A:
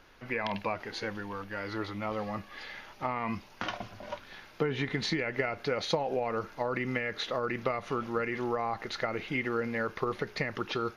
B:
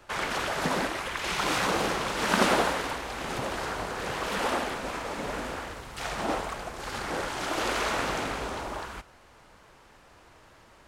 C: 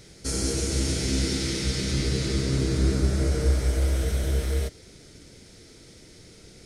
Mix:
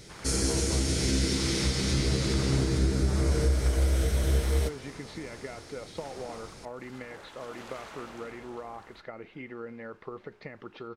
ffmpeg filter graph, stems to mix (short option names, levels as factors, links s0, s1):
-filter_complex "[0:a]lowpass=4300,equalizer=f=350:w=0.32:g=6.5,adelay=50,volume=0.188[s0];[1:a]volume=0.141[s1];[2:a]volume=1.06[s2];[s0][s1][s2]amix=inputs=3:normalize=0,alimiter=limit=0.158:level=0:latency=1:release=263"